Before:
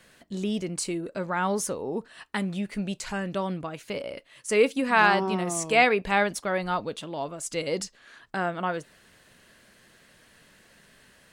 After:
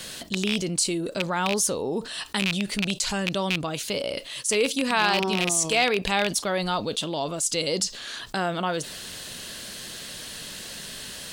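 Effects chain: rattling part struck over -32 dBFS, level -16 dBFS; resonant high shelf 2700 Hz +8 dB, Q 1.5; fast leveller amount 50%; gain -4 dB

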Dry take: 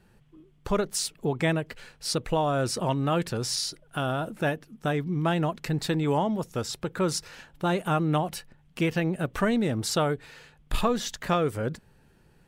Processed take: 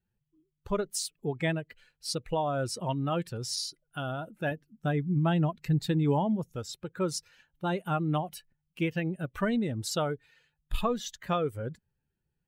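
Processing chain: per-bin expansion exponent 1.5; 4.51–6.56 low shelf 250 Hz +8 dB; gain -2 dB

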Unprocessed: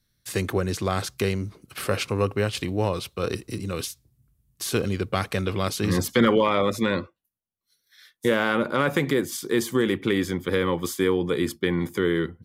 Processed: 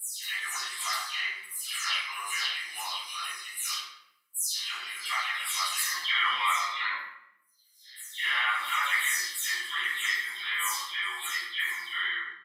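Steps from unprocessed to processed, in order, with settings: spectral delay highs early, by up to 0.269 s; Chebyshev high-pass 1400 Hz, order 3; comb 1 ms, depth 69%; reverb RT60 0.80 s, pre-delay 5 ms, DRR -10 dB; gain -8 dB

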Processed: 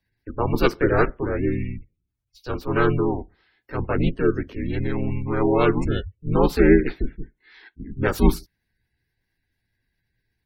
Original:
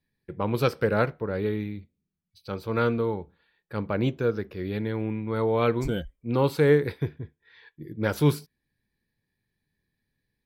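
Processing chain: harmoniser +3 st -1 dB; spectral gate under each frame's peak -30 dB strong; frequency shift -120 Hz; gain +2.5 dB

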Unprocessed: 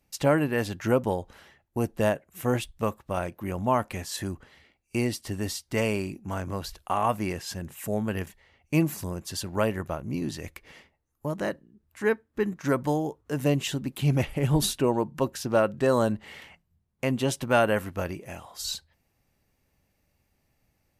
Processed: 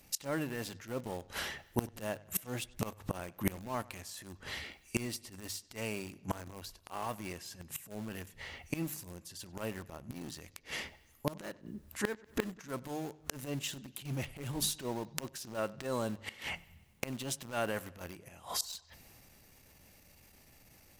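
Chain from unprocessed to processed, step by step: transient shaper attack -12 dB, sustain +3 dB; in parallel at -5 dB: sample gate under -28 dBFS; on the sum: high shelf 2700 Hz +7 dB; notches 50/100/150 Hz; flipped gate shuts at -28 dBFS, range -25 dB; on a send: analogue delay 96 ms, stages 4096, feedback 57%, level -22.5 dB; on the sum: gain +9.5 dB

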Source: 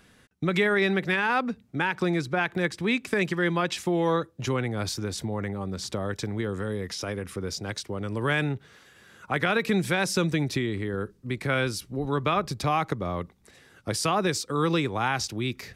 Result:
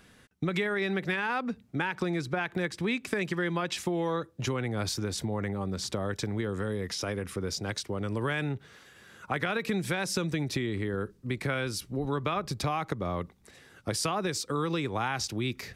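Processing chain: compressor, threshold -26 dBFS, peak gain reduction 7.5 dB

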